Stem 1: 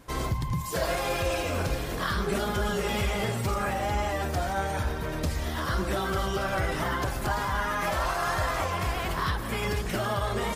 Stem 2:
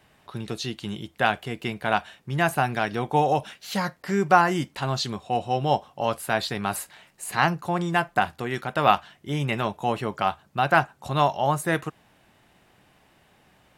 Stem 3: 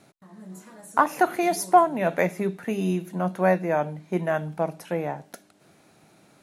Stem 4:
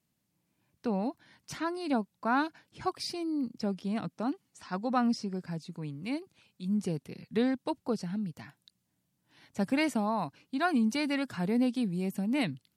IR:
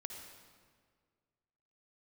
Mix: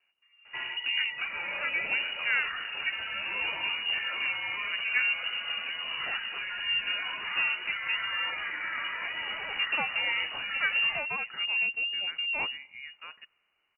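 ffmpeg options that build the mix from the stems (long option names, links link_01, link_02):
-filter_complex "[0:a]highpass=frequency=91:width=0.5412,highpass=frequency=91:width=1.3066,alimiter=level_in=1.5dB:limit=-24dB:level=0:latency=1:release=370,volume=-1.5dB,adelay=450,volume=-1dB,asplit=2[link_01][link_02];[link_02]volume=-8.5dB[link_03];[1:a]acompressor=threshold=-25dB:ratio=2,adelay=1350,volume=-16.5dB,asplit=2[link_04][link_05];[link_05]volume=-21.5dB[link_06];[2:a]lowpass=1900,volume=-15.5dB[link_07];[3:a]volume=0dB,asplit=3[link_08][link_09][link_10];[link_09]volume=-21dB[link_11];[link_10]apad=whole_len=666973[link_12];[link_04][link_12]sidechaincompress=threshold=-33dB:ratio=3:attack=16:release=648[link_13];[4:a]atrim=start_sample=2205[link_14];[link_03][link_06][link_11]amix=inputs=3:normalize=0[link_15];[link_15][link_14]afir=irnorm=-1:irlink=0[link_16];[link_01][link_13][link_07][link_08][link_16]amix=inputs=5:normalize=0,equalizer=frequency=360:width_type=o:width=0.48:gain=-11.5,lowpass=frequency=2600:width_type=q:width=0.5098,lowpass=frequency=2600:width_type=q:width=0.6013,lowpass=frequency=2600:width_type=q:width=0.9,lowpass=frequency=2600:width_type=q:width=2.563,afreqshift=-3000"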